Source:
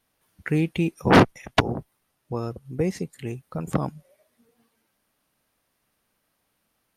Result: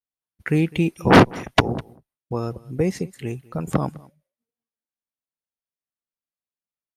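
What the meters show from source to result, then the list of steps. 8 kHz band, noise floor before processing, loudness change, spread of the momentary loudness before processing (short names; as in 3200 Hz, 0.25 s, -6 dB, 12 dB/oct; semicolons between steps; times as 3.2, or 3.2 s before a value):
+3.0 dB, -74 dBFS, +3.0 dB, 17 LU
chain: expander -44 dBFS; echo 0.204 s -23 dB; gain +3 dB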